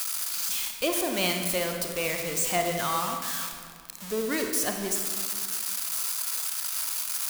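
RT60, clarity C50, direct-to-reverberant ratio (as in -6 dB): 2.0 s, 4.5 dB, 3.5 dB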